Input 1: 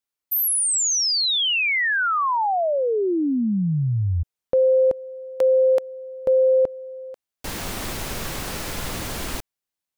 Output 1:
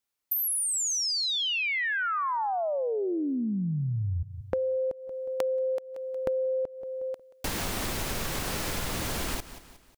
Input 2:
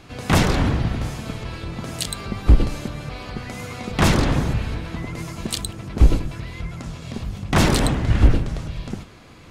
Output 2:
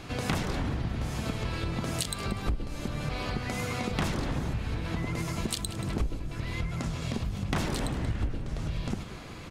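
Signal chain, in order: feedback delay 181 ms, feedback 43%, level -18.5 dB; compression 8:1, threshold -30 dBFS; trim +2.5 dB

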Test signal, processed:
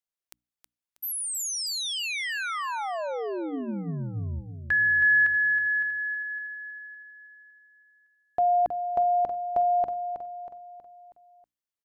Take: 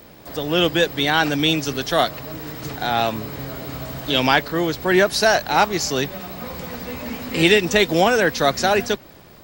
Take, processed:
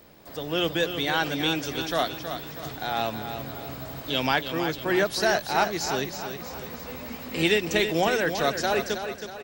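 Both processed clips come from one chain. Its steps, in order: hum notches 60/120/180/240/300 Hz; on a send: feedback delay 320 ms, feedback 47%, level -8.5 dB; on the sum: trim -7.5 dB

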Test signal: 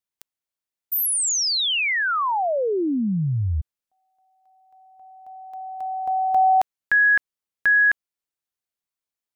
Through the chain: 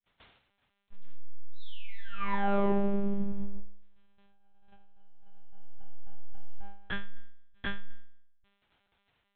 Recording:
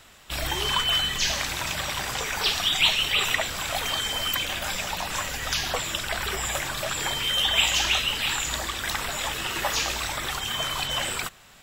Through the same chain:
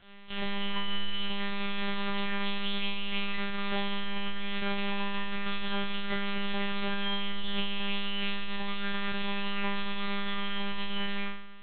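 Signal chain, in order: compression 8:1, threshold -30 dBFS; crackle 28 per s -44 dBFS; half-wave rectifier; flutter echo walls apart 3.1 m, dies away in 0.73 s; monotone LPC vocoder at 8 kHz 200 Hz; trim -2.5 dB

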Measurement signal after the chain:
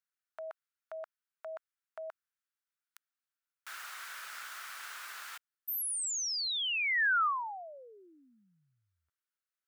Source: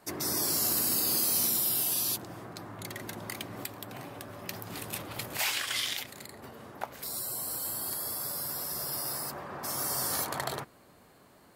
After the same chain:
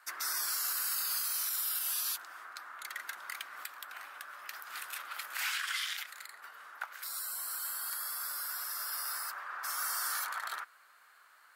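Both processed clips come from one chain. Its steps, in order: resonant high-pass 1.4 kHz, resonance Q 3.7; peak limiter -21 dBFS; trim -3.5 dB

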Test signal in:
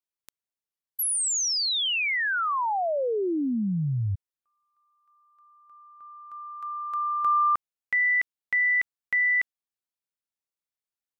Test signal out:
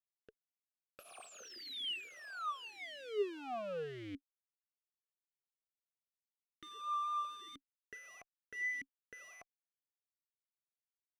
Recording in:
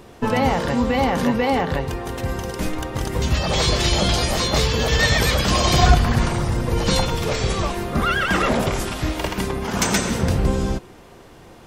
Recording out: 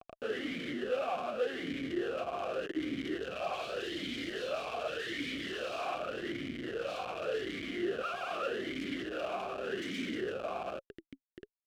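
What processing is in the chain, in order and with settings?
wavefolder -18 dBFS; vibrato 4.4 Hz 15 cents; Schmitt trigger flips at -34.5 dBFS; talking filter a-i 0.85 Hz

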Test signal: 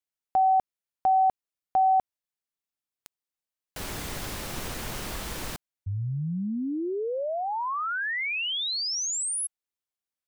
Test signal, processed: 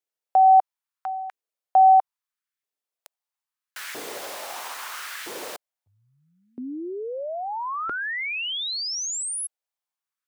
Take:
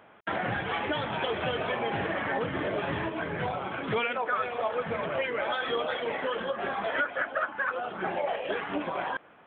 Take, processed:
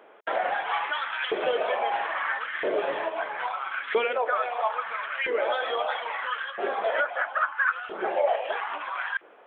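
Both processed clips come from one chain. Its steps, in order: LFO high-pass saw up 0.76 Hz 370–1800 Hz

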